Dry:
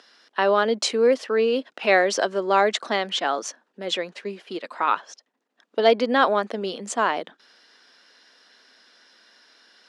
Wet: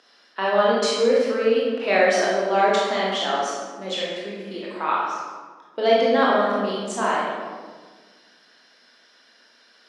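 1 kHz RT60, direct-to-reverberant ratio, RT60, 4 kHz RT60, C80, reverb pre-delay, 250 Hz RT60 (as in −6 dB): 1.4 s, −6.0 dB, 1.5 s, 0.95 s, 1.5 dB, 19 ms, 1.9 s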